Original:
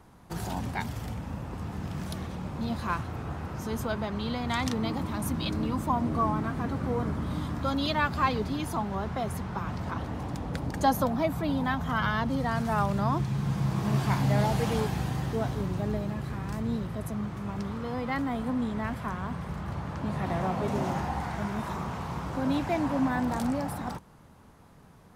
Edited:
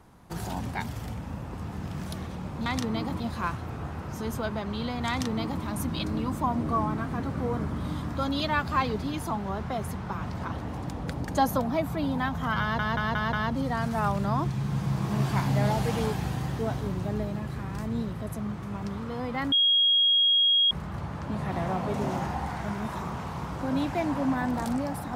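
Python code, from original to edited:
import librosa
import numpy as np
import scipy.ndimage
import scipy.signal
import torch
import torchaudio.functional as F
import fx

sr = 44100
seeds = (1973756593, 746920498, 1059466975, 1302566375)

y = fx.edit(x, sr, fx.duplicate(start_s=4.55, length_s=0.54, to_s=2.66),
    fx.stutter(start_s=12.07, slice_s=0.18, count=5),
    fx.bleep(start_s=18.26, length_s=1.19, hz=3280.0, db=-18.5), tone=tone)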